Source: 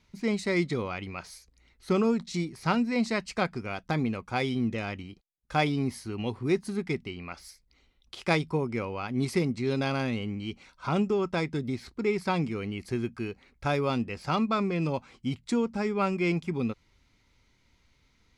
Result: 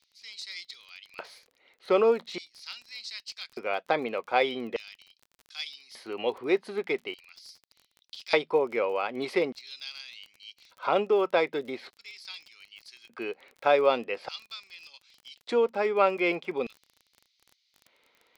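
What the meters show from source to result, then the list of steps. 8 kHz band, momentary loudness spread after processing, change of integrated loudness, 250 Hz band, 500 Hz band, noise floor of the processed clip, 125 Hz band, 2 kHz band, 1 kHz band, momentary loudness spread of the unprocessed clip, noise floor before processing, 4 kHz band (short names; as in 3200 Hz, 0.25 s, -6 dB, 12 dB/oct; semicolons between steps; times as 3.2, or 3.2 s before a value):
n/a, 21 LU, +1.0 dB, -9.0 dB, +4.0 dB, -74 dBFS, -20.5 dB, +0.5 dB, +1.5 dB, 10 LU, -67 dBFS, +2.0 dB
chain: LFO high-pass square 0.42 Hz 520–5100 Hz; resonant high shelf 4900 Hz -11 dB, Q 1.5; crackle 28/s -42 dBFS; gain +2 dB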